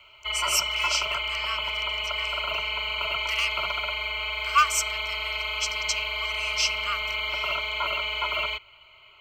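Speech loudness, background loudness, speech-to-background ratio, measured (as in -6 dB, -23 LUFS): -28.5 LUFS, -27.0 LUFS, -1.5 dB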